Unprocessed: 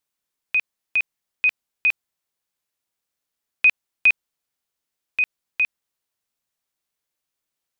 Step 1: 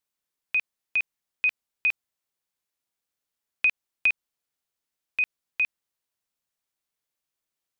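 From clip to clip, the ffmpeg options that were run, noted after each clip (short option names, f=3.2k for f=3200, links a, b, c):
-af "acompressor=threshold=-15dB:ratio=6,volume=-3.5dB"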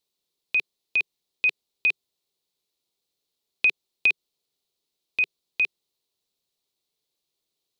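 -af "equalizer=f=160:t=o:w=0.67:g=4,equalizer=f=400:t=o:w=0.67:g=10,equalizer=f=1.6k:t=o:w=0.67:g=-10,equalizer=f=4k:t=o:w=0.67:g=11,volume=1.5dB"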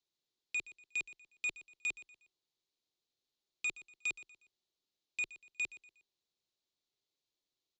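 -af "afreqshift=-37,aresample=16000,asoftclip=type=tanh:threshold=-24.5dB,aresample=44100,aecho=1:1:120|240|360:0.141|0.0523|0.0193,volume=-7.5dB"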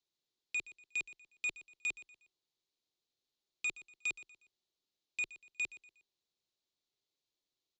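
-af anull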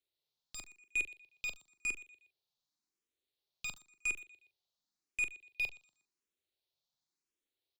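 -filter_complex "[0:a]asplit=2[a][b];[b]acrusher=bits=5:dc=4:mix=0:aa=0.000001,volume=-4dB[c];[a][c]amix=inputs=2:normalize=0,asplit=2[d][e];[e]adelay=41,volume=-11.5dB[f];[d][f]amix=inputs=2:normalize=0,asplit=2[g][h];[h]afreqshift=0.93[i];[g][i]amix=inputs=2:normalize=1,volume=1dB"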